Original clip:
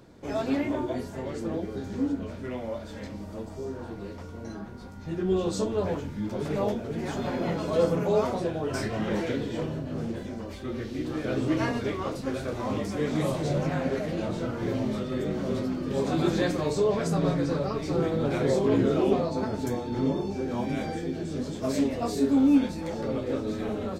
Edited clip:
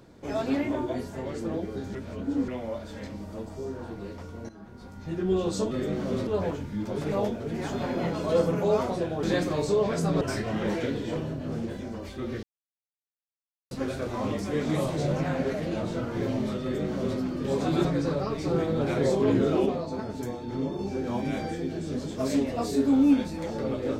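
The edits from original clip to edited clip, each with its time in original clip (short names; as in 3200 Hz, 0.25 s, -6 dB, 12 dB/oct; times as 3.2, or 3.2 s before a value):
1.95–2.48 reverse
4.49–4.96 fade in, from -13.5 dB
10.89–12.17 mute
15.09–15.65 copy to 5.71
16.31–17.29 move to 8.67
19.1–20.23 gain -4 dB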